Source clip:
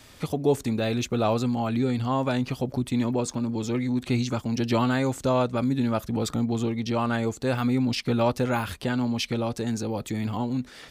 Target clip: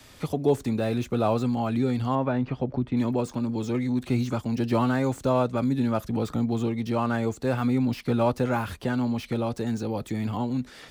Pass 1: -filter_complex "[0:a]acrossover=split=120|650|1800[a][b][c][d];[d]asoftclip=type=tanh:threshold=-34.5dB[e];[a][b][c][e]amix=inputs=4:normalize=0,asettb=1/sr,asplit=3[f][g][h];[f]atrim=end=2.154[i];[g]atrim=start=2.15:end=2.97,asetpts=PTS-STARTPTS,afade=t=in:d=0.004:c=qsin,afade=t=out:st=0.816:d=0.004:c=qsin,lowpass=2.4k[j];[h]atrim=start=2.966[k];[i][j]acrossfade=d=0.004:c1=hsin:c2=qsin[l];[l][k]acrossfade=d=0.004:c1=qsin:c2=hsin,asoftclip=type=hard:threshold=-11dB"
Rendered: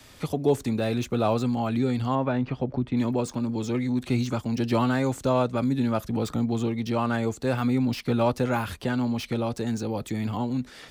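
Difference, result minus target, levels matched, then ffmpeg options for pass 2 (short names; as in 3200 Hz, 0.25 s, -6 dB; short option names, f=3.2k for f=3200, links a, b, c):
soft clip: distortion -4 dB
-filter_complex "[0:a]acrossover=split=120|650|1800[a][b][c][d];[d]asoftclip=type=tanh:threshold=-42dB[e];[a][b][c][e]amix=inputs=4:normalize=0,asettb=1/sr,asplit=3[f][g][h];[f]atrim=end=2.154[i];[g]atrim=start=2.15:end=2.97,asetpts=PTS-STARTPTS,afade=t=in:d=0.004:c=qsin,afade=t=out:st=0.816:d=0.004:c=qsin,lowpass=2.4k[j];[h]atrim=start=2.966[k];[i][j]acrossfade=d=0.004:c1=hsin:c2=qsin[l];[l][k]acrossfade=d=0.004:c1=qsin:c2=hsin,asoftclip=type=hard:threshold=-11dB"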